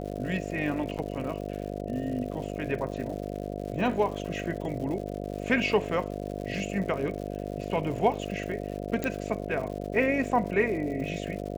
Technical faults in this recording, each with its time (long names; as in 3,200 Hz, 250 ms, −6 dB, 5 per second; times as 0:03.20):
mains buzz 50 Hz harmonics 14 −35 dBFS
surface crackle 170 per second −38 dBFS
0:00.98–0:00.99: drop-out 8.3 ms
0:09.04: click −16 dBFS